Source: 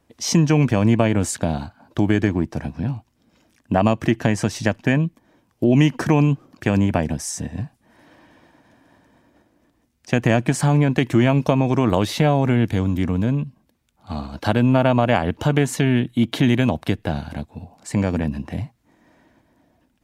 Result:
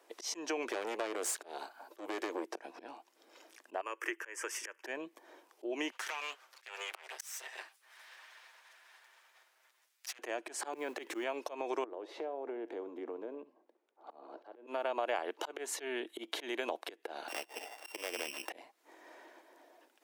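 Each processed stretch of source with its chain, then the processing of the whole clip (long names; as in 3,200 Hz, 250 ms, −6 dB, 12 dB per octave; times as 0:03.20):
0:00.72–0:02.50: high-shelf EQ 9,300 Hz +11 dB + tube saturation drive 19 dB, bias 0.6
0:03.81–0:04.84: high-pass filter 430 Hz 24 dB per octave + phaser with its sweep stopped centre 1,700 Hz, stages 4
0:05.91–0:10.19: lower of the sound and its delayed copy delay 7.7 ms + high-pass filter 1,500 Hz + downward compressor, threshold −32 dBFS
0:10.73–0:11.24: mu-law and A-law mismatch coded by mu + parametric band 170 Hz +6.5 dB 0.81 octaves + notch filter 660 Hz, Q 9.4
0:11.84–0:14.67: downward compressor 3 to 1, threshold −32 dBFS + resonant band-pass 370 Hz, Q 0.88 + flutter between parallel walls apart 11.9 metres, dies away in 0.23 s
0:17.28–0:18.50: samples sorted by size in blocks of 16 samples + high-pass filter 410 Hz 6 dB per octave
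whole clip: volume swells 368 ms; elliptic high-pass filter 360 Hz, stop band 70 dB; downward compressor 3 to 1, threshold −41 dBFS; level +3.5 dB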